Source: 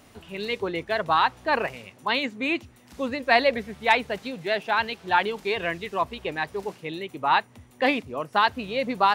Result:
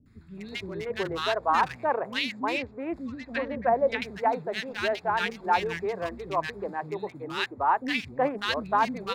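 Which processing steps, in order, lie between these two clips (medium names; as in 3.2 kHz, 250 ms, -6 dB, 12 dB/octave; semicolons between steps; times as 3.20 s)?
local Wiener filter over 15 samples; 2.51–3.96 s: low-pass that closes with the level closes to 860 Hz, closed at -16.5 dBFS; three bands offset in time lows, highs, mids 60/370 ms, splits 290/1500 Hz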